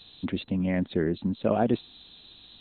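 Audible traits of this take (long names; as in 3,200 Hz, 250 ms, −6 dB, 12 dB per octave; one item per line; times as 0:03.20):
background noise floor −53 dBFS
spectral slope −6.5 dB per octave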